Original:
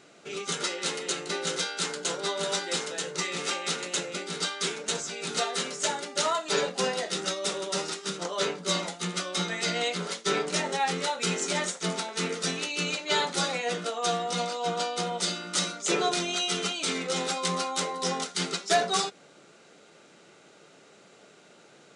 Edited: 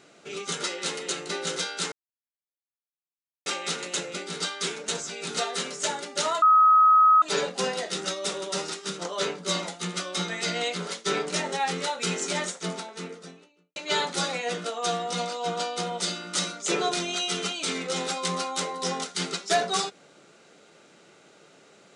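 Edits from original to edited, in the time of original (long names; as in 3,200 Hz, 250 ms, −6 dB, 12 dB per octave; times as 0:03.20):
0:01.92–0:03.46: silence
0:06.42: insert tone 1,270 Hz −13.5 dBFS 0.80 s
0:11.54–0:12.96: fade out and dull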